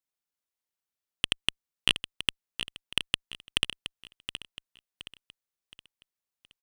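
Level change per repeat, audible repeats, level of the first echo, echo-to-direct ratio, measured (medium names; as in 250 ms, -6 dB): -8.0 dB, 3, -10.5 dB, -10.0 dB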